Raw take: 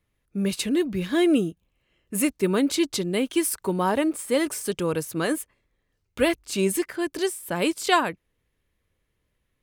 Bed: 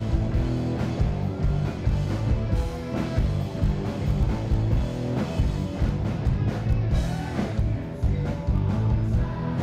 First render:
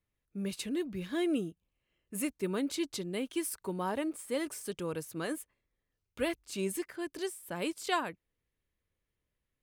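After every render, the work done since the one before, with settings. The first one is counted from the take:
level −11 dB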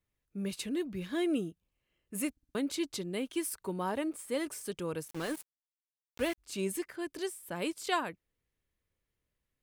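0:02.31: stutter in place 0.06 s, 4 plays
0:05.08–0:06.38: centre clipping without the shift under −40 dBFS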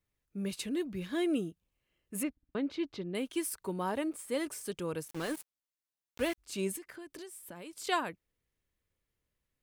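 0:02.23–0:03.15: high-frequency loss of the air 260 metres
0:06.76–0:07.73: downward compressor 12 to 1, threshold −42 dBFS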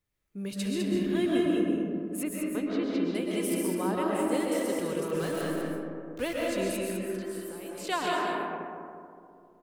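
single-tap delay 203 ms −5.5 dB
comb and all-pass reverb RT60 2.5 s, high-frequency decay 0.3×, pre-delay 90 ms, DRR −3 dB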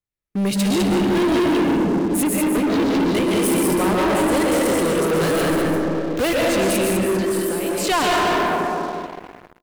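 leveller curve on the samples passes 5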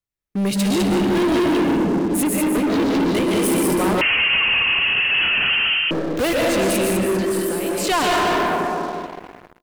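0:04.01–0:05.91: voice inversion scrambler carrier 3,100 Hz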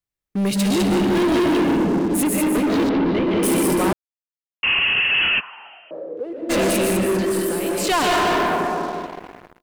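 0:02.89–0:03.43: high-frequency loss of the air 280 metres
0:03.93–0:04.63: silence
0:05.39–0:06.49: resonant band-pass 1,100 Hz → 330 Hz, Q 6.4

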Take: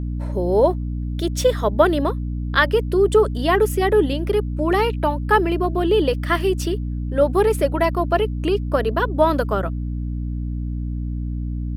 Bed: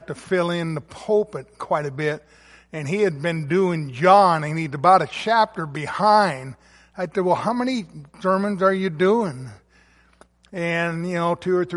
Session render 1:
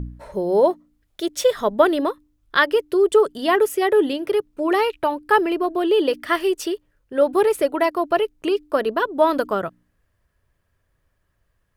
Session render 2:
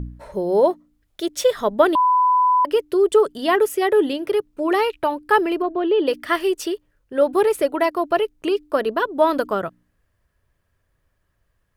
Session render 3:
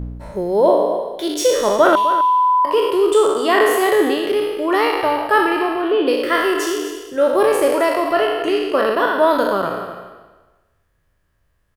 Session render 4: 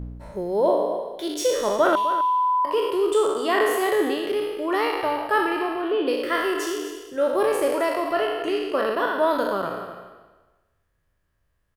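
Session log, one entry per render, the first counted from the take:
hum removal 60 Hz, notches 5
0:01.95–0:02.65: beep over 1,000 Hz −13 dBFS; 0:05.62–0:06.07: high-frequency loss of the air 260 metres
peak hold with a decay on every bin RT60 1.25 s; single-tap delay 255 ms −12.5 dB
level −6.5 dB

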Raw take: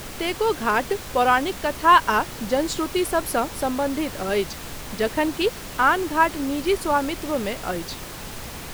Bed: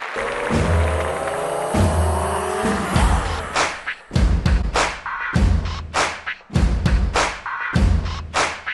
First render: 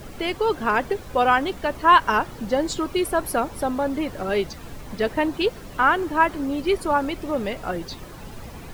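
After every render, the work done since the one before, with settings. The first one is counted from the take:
broadband denoise 11 dB, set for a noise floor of −36 dBFS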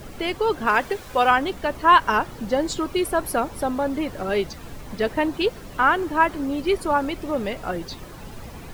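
0:00.67–0:01.31: tilt shelving filter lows −4 dB, about 640 Hz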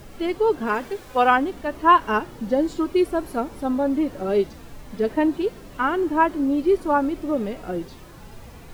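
dynamic equaliser 300 Hz, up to +5 dB, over −37 dBFS, Q 0.9
harmonic and percussive parts rebalanced percussive −16 dB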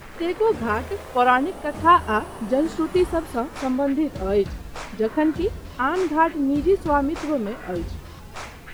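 mix in bed −17 dB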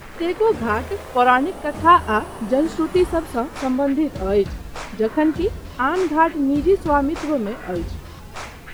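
level +2.5 dB

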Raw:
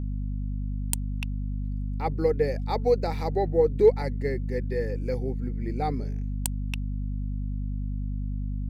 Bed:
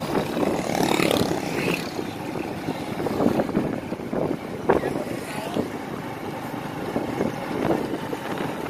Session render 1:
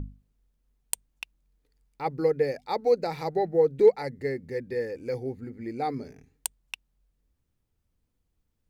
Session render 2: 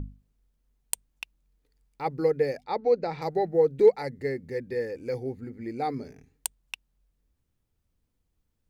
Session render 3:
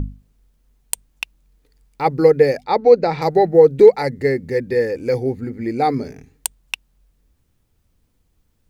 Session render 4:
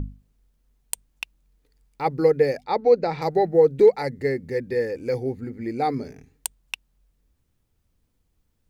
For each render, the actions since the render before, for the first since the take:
mains-hum notches 50/100/150/200/250 Hz
0:02.63–0:03.22: high-frequency loss of the air 140 metres
boost into a limiter +12 dB
level −6 dB

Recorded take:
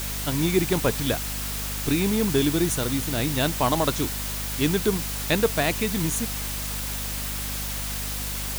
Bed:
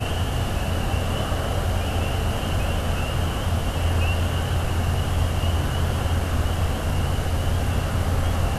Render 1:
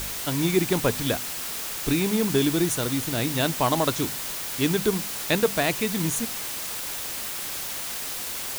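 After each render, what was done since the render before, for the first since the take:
hum removal 50 Hz, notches 5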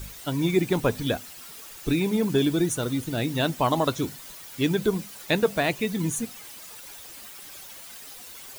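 broadband denoise 13 dB, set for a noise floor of −32 dBFS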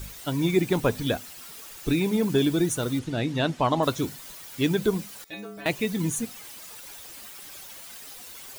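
0:02.99–0:03.83: high-frequency loss of the air 75 metres
0:05.24–0:05.66: stiff-string resonator 100 Hz, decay 0.78 s, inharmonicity 0.008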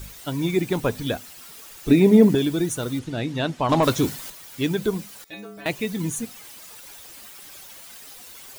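0:01.89–0:02.35: hollow resonant body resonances 240/410/610/1,900 Hz, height 12 dB, ringing for 25 ms
0:03.69–0:04.30: leveller curve on the samples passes 2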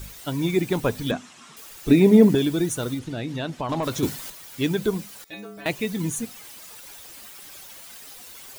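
0:01.11–0:01.57: loudspeaker in its box 140–7,500 Hz, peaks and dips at 150 Hz +6 dB, 240 Hz +9 dB, 510 Hz −4 dB, 1,100 Hz +7 dB, 4,600 Hz −7 dB
0:02.94–0:04.03: downward compressor 2.5 to 1, threshold −26 dBFS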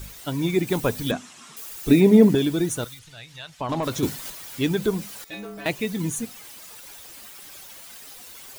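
0:00.67–0:02.01: high-shelf EQ 6,600 Hz +7 dB
0:02.84–0:03.61: guitar amp tone stack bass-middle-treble 10-0-10
0:04.25–0:05.70: mu-law and A-law mismatch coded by mu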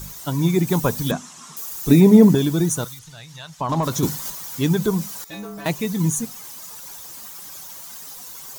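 graphic EQ with 15 bands 160 Hz +9 dB, 1,000 Hz +7 dB, 2,500 Hz −4 dB, 6,300 Hz +7 dB, 16,000 Hz +9 dB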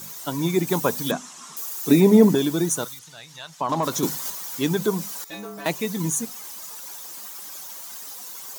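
high-pass filter 240 Hz 12 dB per octave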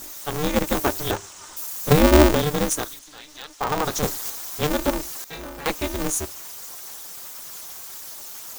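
ring modulator with a square carrier 150 Hz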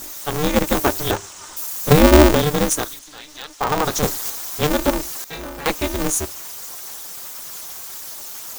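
level +4 dB
brickwall limiter −1 dBFS, peak gain reduction 1.5 dB

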